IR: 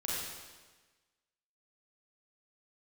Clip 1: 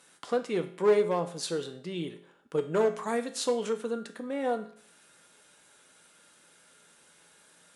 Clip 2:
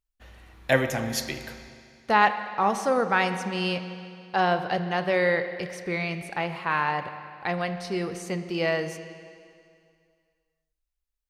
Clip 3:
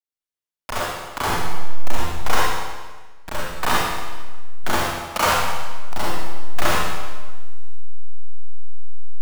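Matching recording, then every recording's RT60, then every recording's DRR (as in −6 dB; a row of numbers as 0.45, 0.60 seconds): 3; 0.55, 2.3, 1.3 seconds; 6.5, 9.0, −6.5 decibels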